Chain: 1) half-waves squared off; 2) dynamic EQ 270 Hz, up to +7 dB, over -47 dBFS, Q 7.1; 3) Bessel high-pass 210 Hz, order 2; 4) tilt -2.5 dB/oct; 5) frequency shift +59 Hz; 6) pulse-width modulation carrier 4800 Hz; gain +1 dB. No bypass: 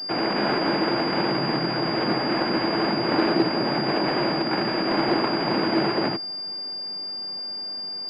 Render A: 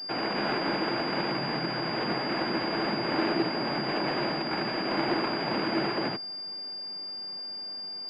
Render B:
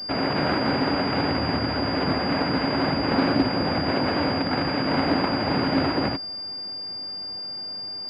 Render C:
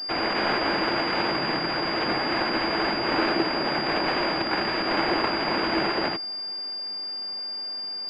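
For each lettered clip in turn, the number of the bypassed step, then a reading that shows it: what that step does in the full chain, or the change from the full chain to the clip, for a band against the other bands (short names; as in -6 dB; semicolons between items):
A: 1, distortion -5 dB; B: 5, 125 Hz band +4.0 dB; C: 4, 125 Hz band -6.5 dB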